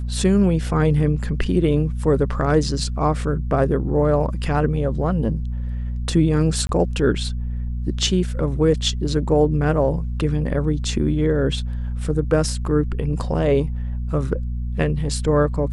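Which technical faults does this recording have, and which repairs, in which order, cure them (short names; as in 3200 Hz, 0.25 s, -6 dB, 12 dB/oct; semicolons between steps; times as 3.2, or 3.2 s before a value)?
hum 60 Hz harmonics 4 -25 dBFS
6.67–6.69 gap 22 ms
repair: de-hum 60 Hz, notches 4; interpolate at 6.67, 22 ms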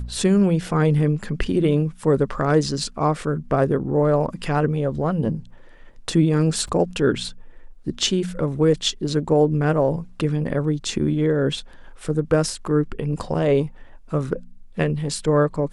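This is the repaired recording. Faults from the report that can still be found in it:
none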